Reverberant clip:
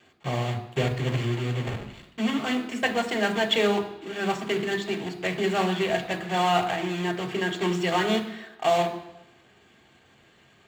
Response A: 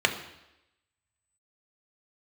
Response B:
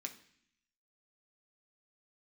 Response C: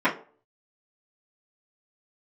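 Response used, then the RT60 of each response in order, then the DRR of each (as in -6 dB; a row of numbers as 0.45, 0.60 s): A; 0.90, 0.60, 0.45 s; 4.0, 2.5, -12.5 dB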